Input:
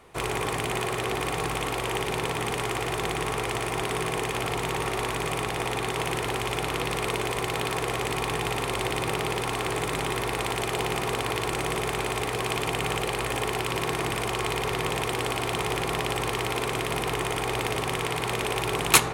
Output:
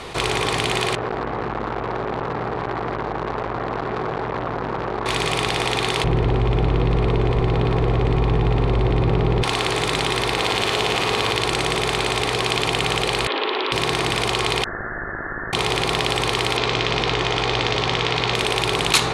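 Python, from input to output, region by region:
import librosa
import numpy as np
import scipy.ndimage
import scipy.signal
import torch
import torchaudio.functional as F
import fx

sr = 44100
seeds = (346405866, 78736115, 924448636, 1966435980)

y = fx.chain(x, sr, fx.lowpass(hz=1400.0, slope=24),
    fx.overload_stage(gain_db=25.5),
    fx.transformer_sat(knee_hz=520.0), at=(0.95, 5.06))
y = fx.chain(y, sr, fx.lowpass(hz=3500.0, slope=6),
    fx.tilt_eq(slope=-4.5), at=(6.04, 9.43))
y = fx.chain(y, sr, fx.room_flutter(wall_m=8.0, rt60_s=0.56),
    fx.resample_linear(factor=2), at=(10.33, 11.32))
y = fx.chain(y, sr, fx.self_delay(depth_ms=0.23),
    fx.ellip_bandpass(low_hz=290.0, high_hz=3300.0, order=3, stop_db=40),
    fx.notch(hz=730.0, q=7.8), at=(13.27, 13.72))
y = fx.chain(y, sr, fx.ellip_highpass(hz=730.0, order=4, stop_db=80),
    fx.peak_eq(hz=1200.0, db=-11.5, octaves=2.8),
    fx.freq_invert(carrier_hz=2500), at=(14.64, 15.53))
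y = fx.chain(y, sr, fx.lowpass(hz=6300.0, slope=24),
    fx.doubler(ms=17.0, db=-11.5), at=(16.57, 18.35))
y = scipy.signal.sosfilt(scipy.signal.butter(2, 8800.0, 'lowpass', fs=sr, output='sos'), y)
y = fx.peak_eq(y, sr, hz=4100.0, db=8.5, octaves=0.88)
y = fx.env_flatten(y, sr, amount_pct=50)
y = F.gain(torch.from_numpy(y), -2.5).numpy()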